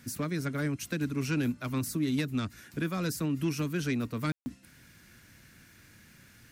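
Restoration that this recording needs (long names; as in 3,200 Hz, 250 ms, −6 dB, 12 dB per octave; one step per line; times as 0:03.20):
click removal
ambience match 0:04.32–0:04.46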